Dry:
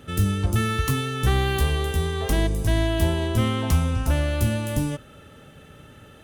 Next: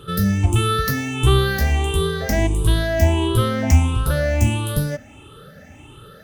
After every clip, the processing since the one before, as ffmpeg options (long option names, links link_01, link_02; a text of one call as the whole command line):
ffmpeg -i in.wav -af "afftfilt=real='re*pow(10,16/40*sin(2*PI*(0.64*log(max(b,1)*sr/1024/100)/log(2)-(1.5)*(pts-256)/sr)))':imag='im*pow(10,16/40*sin(2*PI*(0.64*log(max(b,1)*sr/1024/100)/log(2)-(1.5)*(pts-256)/sr)))':win_size=1024:overlap=0.75,volume=1.5dB" out.wav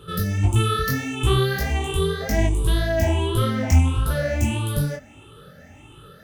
ffmpeg -i in.wav -af "flanger=delay=18:depth=5.3:speed=1.7" out.wav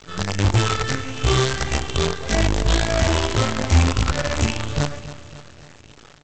ffmpeg -i in.wav -af "aresample=16000,acrusher=bits=4:dc=4:mix=0:aa=0.000001,aresample=44100,aecho=1:1:275|550|825|1100|1375:0.188|0.102|0.0549|0.0297|0.016" out.wav